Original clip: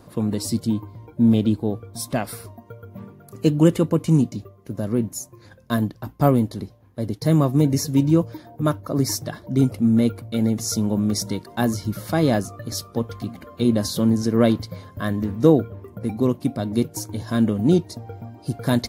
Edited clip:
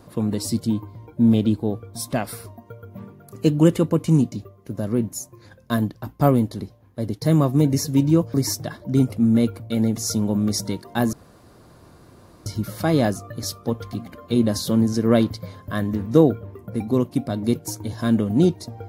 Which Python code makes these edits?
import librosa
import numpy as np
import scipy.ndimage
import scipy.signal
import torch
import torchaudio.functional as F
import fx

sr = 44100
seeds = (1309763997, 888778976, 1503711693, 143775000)

y = fx.edit(x, sr, fx.cut(start_s=8.34, length_s=0.62),
    fx.insert_room_tone(at_s=11.75, length_s=1.33), tone=tone)